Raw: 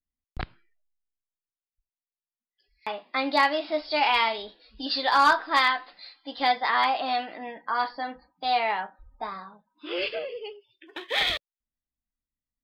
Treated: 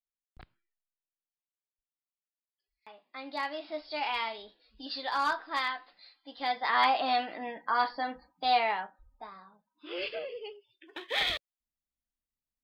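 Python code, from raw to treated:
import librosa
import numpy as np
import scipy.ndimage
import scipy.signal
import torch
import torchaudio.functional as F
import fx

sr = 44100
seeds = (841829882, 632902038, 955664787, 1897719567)

y = fx.gain(x, sr, db=fx.line((2.93, -19.5), (3.64, -10.0), (6.4, -10.0), (6.85, -1.0), (8.54, -1.0), (9.31, -12.5), (10.27, -4.5)))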